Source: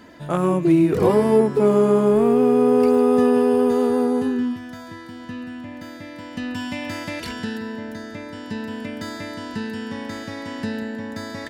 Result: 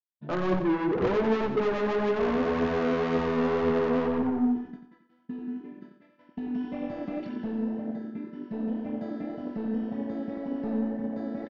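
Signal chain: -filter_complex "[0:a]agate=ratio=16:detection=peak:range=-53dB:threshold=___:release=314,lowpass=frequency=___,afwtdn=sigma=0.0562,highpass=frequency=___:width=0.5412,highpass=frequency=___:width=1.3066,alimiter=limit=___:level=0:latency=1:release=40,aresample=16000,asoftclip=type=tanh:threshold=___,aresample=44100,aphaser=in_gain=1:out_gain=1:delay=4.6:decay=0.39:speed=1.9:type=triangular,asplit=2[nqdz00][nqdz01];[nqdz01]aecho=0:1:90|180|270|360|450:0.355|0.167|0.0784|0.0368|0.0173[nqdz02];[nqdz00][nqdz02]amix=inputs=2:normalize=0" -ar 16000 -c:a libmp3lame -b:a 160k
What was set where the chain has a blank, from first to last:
-34dB, 2800, 160, 160, -9.5dB, -24.5dB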